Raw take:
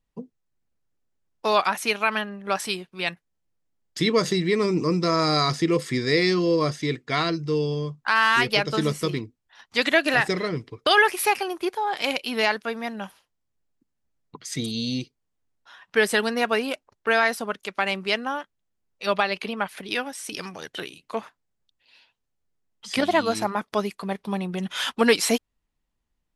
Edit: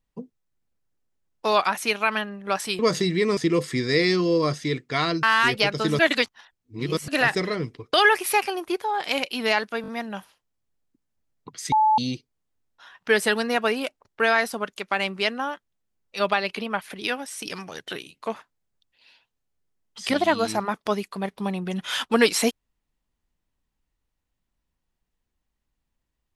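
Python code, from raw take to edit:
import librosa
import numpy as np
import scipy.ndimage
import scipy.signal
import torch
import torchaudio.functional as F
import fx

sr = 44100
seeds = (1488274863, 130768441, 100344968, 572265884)

y = fx.edit(x, sr, fx.cut(start_s=2.79, length_s=1.31),
    fx.cut(start_s=4.68, length_s=0.87),
    fx.cut(start_s=7.41, length_s=0.75),
    fx.reverse_span(start_s=8.92, length_s=1.09),
    fx.stutter(start_s=12.75, slice_s=0.02, count=4),
    fx.bleep(start_s=14.59, length_s=0.26, hz=865.0, db=-15.0), tone=tone)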